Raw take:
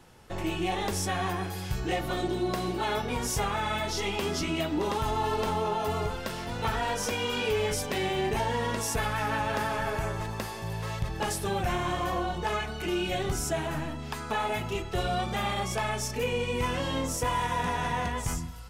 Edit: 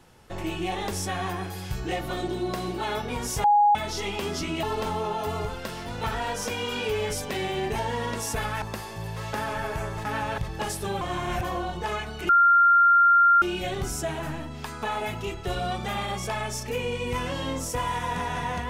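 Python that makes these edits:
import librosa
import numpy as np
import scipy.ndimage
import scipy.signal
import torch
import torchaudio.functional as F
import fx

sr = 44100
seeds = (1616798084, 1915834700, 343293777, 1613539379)

y = fx.edit(x, sr, fx.bleep(start_s=3.44, length_s=0.31, hz=827.0, db=-15.0),
    fx.cut(start_s=4.63, length_s=0.61),
    fx.swap(start_s=9.23, length_s=0.33, other_s=10.28, other_length_s=0.71),
    fx.reverse_span(start_s=11.62, length_s=0.42),
    fx.insert_tone(at_s=12.9, length_s=1.13, hz=1390.0, db=-14.0), tone=tone)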